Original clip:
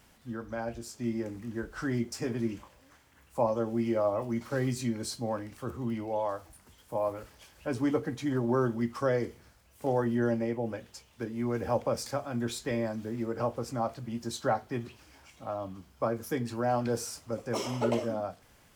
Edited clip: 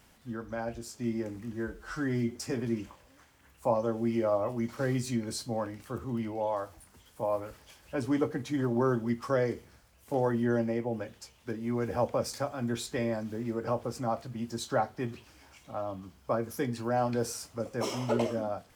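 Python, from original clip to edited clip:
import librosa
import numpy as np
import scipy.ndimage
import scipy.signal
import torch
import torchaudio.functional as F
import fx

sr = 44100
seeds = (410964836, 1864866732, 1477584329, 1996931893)

y = fx.edit(x, sr, fx.stretch_span(start_s=1.53, length_s=0.55, factor=1.5), tone=tone)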